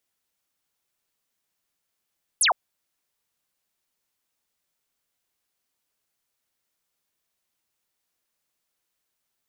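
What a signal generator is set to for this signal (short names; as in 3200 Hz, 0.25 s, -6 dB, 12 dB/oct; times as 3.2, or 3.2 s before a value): laser zap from 12000 Hz, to 610 Hz, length 0.11 s sine, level -16.5 dB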